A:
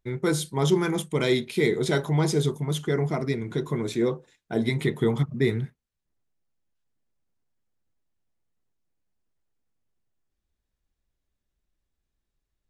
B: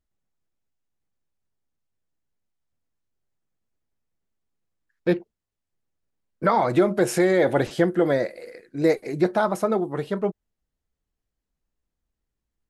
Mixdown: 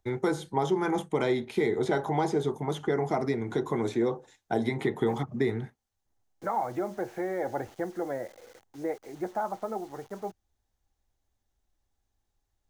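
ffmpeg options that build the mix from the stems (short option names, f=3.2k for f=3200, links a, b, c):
-filter_complex "[0:a]volume=2dB[a];[1:a]lowpass=f=2.4k:w=0.5412,lowpass=f=2.4k:w=1.3066,acrusher=bits=6:mix=0:aa=0.000001,volume=-13dB[b];[a][b]amix=inputs=2:normalize=0,equalizer=f=100:t=o:w=0.33:g=7,equalizer=f=160:t=o:w=0.33:g=-9,equalizer=f=800:t=o:w=0.33:g=11,equalizer=f=2.5k:t=o:w=0.33:g=-4,equalizer=f=6.3k:t=o:w=0.33:g=5,acrossover=split=180|2500[c][d][e];[c]acompressor=threshold=-42dB:ratio=4[f];[d]acompressor=threshold=-24dB:ratio=4[g];[e]acompressor=threshold=-51dB:ratio=4[h];[f][g][h]amix=inputs=3:normalize=0"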